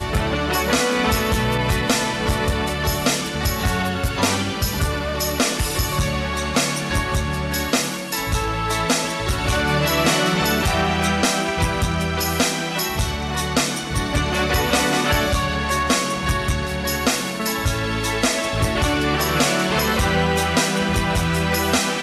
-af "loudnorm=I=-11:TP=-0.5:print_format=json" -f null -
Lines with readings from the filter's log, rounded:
"input_i" : "-20.1",
"input_tp" : "-5.1",
"input_lra" : "2.2",
"input_thresh" : "-30.1",